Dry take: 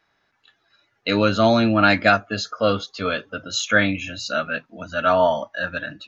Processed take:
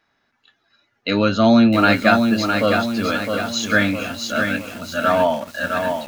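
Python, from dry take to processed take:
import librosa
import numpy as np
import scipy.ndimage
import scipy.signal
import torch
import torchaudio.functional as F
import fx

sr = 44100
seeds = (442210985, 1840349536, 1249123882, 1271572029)

y = fx.peak_eq(x, sr, hz=240.0, db=9.5, octaves=0.24)
y = fx.echo_crushed(y, sr, ms=659, feedback_pct=55, bits=6, wet_db=-5.0)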